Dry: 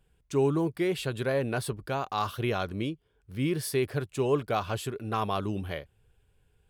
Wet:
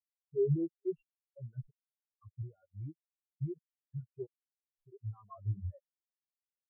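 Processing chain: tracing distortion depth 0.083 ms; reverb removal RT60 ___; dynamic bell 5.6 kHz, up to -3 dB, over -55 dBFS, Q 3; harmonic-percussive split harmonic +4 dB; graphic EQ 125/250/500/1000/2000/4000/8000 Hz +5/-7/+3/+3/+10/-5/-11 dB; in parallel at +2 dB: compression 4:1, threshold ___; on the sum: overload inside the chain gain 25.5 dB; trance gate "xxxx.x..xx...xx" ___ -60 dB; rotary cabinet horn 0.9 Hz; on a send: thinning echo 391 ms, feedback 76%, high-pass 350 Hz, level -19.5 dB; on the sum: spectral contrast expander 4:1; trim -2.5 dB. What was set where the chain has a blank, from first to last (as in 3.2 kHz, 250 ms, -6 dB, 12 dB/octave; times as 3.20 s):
1.5 s, -36 dBFS, 88 bpm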